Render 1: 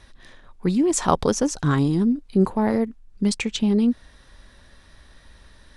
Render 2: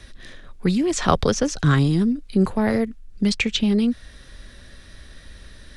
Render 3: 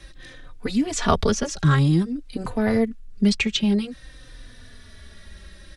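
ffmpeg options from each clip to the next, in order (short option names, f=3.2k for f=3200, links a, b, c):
-filter_complex "[0:a]acrossover=split=5500[a][b];[b]acompressor=threshold=-49dB:ratio=4:attack=1:release=60[c];[a][c]amix=inputs=2:normalize=0,equalizer=f=920:t=o:w=0.71:g=-10,acrossover=split=160|540|3300[d][e][f][g];[e]acompressor=threshold=-32dB:ratio=6[h];[d][h][f][g]amix=inputs=4:normalize=0,volume=7dB"
-filter_complex "[0:a]asplit=2[a][b];[b]adelay=3.3,afreqshift=-0.52[c];[a][c]amix=inputs=2:normalize=1,volume=2dB"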